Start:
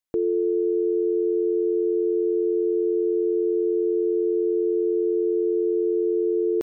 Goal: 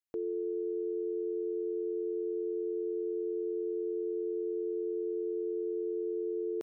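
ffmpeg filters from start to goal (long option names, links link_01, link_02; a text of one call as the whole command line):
ffmpeg -i in.wav -af "lowshelf=frequency=310:gain=-10.5,volume=-8dB" out.wav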